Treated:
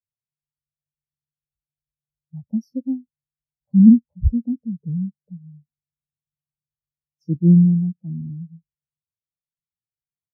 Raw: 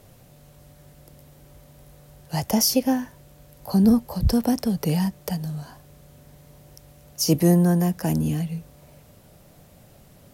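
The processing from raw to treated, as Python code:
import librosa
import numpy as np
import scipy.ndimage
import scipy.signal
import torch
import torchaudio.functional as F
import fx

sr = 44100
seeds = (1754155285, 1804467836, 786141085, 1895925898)

y = fx.low_shelf(x, sr, hz=480.0, db=9.0)
y = fx.spectral_expand(y, sr, expansion=2.5)
y = y * 10.0 ** (-1.5 / 20.0)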